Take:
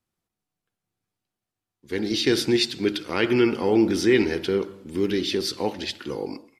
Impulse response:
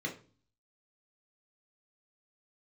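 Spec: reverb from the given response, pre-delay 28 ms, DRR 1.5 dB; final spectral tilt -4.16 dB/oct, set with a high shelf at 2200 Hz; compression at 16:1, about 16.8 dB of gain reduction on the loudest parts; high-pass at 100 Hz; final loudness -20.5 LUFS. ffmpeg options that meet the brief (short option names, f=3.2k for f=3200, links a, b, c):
-filter_complex "[0:a]highpass=100,highshelf=f=2.2k:g=5,acompressor=threshold=-31dB:ratio=16,asplit=2[a][b];[1:a]atrim=start_sample=2205,adelay=28[c];[b][c]afir=irnorm=-1:irlink=0,volume=-4.5dB[d];[a][d]amix=inputs=2:normalize=0,volume=11.5dB"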